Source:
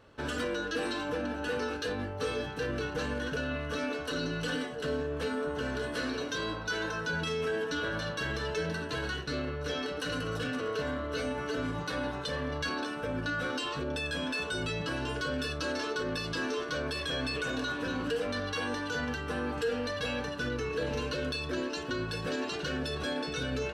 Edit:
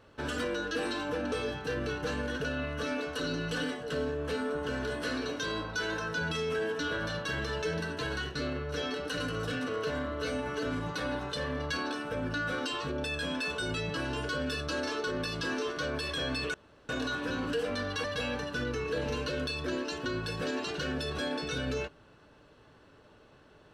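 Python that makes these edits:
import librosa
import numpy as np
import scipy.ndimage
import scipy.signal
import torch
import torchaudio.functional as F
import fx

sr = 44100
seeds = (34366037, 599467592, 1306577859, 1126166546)

y = fx.edit(x, sr, fx.cut(start_s=1.32, length_s=0.92),
    fx.insert_room_tone(at_s=17.46, length_s=0.35),
    fx.cut(start_s=18.61, length_s=1.28), tone=tone)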